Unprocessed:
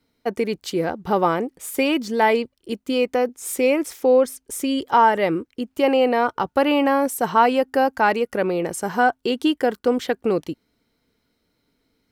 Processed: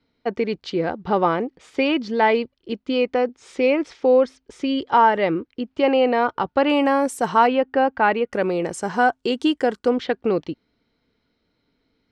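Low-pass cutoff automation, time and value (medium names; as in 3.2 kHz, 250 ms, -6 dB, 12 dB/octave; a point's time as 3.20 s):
low-pass 24 dB/octave
4.7 kHz
from 6.70 s 9.2 kHz
from 7.47 s 3.5 kHz
from 8.33 s 8.4 kHz
from 9.89 s 4.8 kHz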